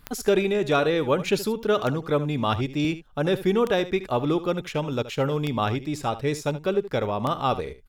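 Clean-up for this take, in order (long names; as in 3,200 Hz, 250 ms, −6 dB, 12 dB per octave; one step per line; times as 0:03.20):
click removal
echo removal 74 ms −14.5 dB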